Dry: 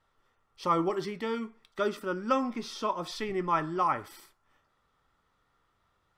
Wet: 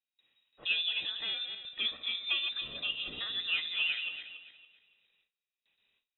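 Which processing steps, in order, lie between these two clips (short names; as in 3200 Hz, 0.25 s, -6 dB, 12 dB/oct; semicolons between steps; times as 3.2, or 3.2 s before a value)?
regenerating reverse delay 0.141 s, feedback 53%, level -7 dB; in parallel at -6 dB: soft clip -24 dBFS, distortion -13 dB; on the sum: inverted band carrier 3800 Hz; gate with hold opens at -56 dBFS; gain -8 dB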